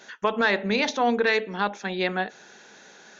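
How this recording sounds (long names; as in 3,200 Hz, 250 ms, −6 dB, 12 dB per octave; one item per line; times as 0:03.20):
background noise floor −51 dBFS
spectral slope −2.0 dB per octave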